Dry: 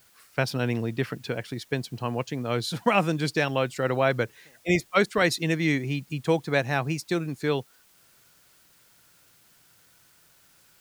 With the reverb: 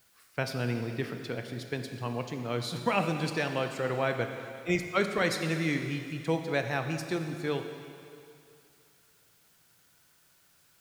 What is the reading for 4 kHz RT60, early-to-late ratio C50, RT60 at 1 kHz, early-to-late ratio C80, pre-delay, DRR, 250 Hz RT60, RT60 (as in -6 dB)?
2.6 s, 6.5 dB, 2.6 s, 7.5 dB, 16 ms, 5.5 dB, 2.3 s, 2.5 s